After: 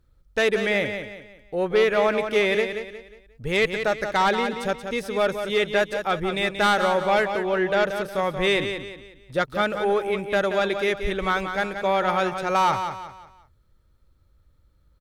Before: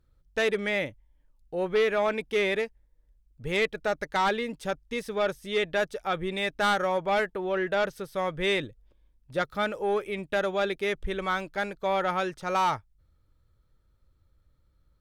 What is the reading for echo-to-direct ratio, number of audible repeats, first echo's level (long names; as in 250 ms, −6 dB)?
−7.5 dB, 4, −8.0 dB